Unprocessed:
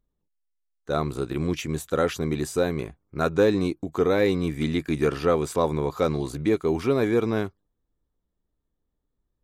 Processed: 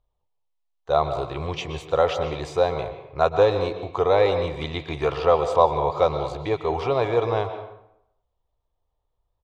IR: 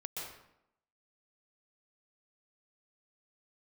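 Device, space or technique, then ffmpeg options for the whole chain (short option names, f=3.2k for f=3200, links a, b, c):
filtered reverb send: -filter_complex "[0:a]firequalizer=gain_entry='entry(110,0);entry(210,-21);entry(490,-2);entry(720,5);entry(1000,4);entry(1500,-9);entry(3100,0);entry(6500,-9);entry(11000,-25)':delay=0.05:min_phase=1,asplit=2[a][b];[b]highpass=150,lowpass=4.7k[c];[1:a]atrim=start_sample=2205[d];[c][d]afir=irnorm=-1:irlink=0,volume=-4.5dB[e];[a][e]amix=inputs=2:normalize=0,volume=3dB"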